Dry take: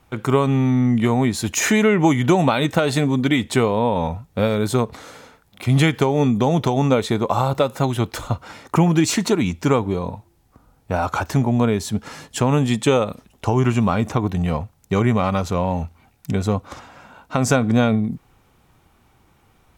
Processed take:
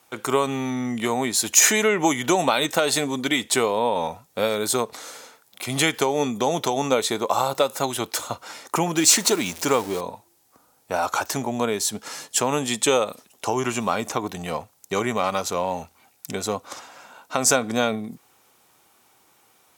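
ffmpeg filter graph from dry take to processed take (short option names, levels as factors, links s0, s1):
-filter_complex "[0:a]asettb=1/sr,asplit=3[s0][s1][s2];[s0]atrim=end=8.974[s3];[s1]atrim=start=8.97:end=10.01,asetpts=PTS-STARTPTS,afade=t=in:d=0.004:c=qsin,afade=t=out:st=1.036:d=0.004:c=qsin,aeval=exprs='val(0)+0.5*0.0299*sgn(val(0))':c=same,acrusher=bits=8:mix=0:aa=0.5[s4];[s2]atrim=start=10.006[s5];[s3][s4]acrossfade=d=0.004:c1=hsin:c2=qsin[s6];[s6][s5]acrossfade=d=0.004:c1=qsin:c2=hsin,highpass=100,bass=f=250:g=-15,treble=f=4000:g=10,volume=0.891"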